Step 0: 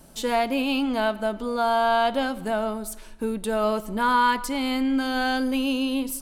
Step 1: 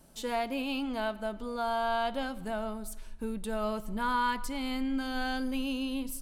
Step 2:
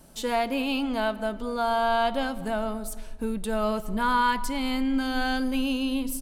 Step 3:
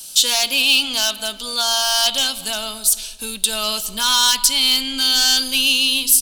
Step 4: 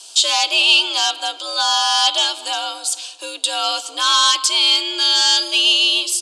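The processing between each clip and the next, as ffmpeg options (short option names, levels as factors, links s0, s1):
-af "asubboost=boost=3.5:cutoff=170,volume=0.376"
-filter_complex "[0:a]asplit=2[s0][s1];[s1]adelay=226,lowpass=f=990:p=1,volume=0.141,asplit=2[s2][s3];[s3]adelay=226,lowpass=f=990:p=1,volume=0.49,asplit=2[s4][s5];[s5]adelay=226,lowpass=f=990:p=1,volume=0.49,asplit=2[s6][s7];[s7]adelay=226,lowpass=f=990:p=1,volume=0.49[s8];[s0][s2][s4][s6][s8]amix=inputs=5:normalize=0,volume=2"
-filter_complex "[0:a]equalizer=f=2100:t=o:w=2.4:g=14.5,acrossover=split=190[s0][s1];[s1]asoftclip=type=hard:threshold=0.282[s2];[s0][s2]amix=inputs=2:normalize=0,aexciter=amount=8.5:drive=9.9:freq=3100,volume=0.447"
-af "afreqshift=85,highpass=f=420:w=0.5412,highpass=f=420:w=1.3066,equalizer=f=900:t=q:w=4:g=3,equalizer=f=1800:t=q:w=4:g=-8,equalizer=f=4000:t=q:w=4:g=-4,equalizer=f=5800:t=q:w=4:g=-7,lowpass=f=7300:w=0.5412,lowpass=f=7300:w=1.3066,volume=1.58" -ar 48000 -c:a libvorbis -b:a 192k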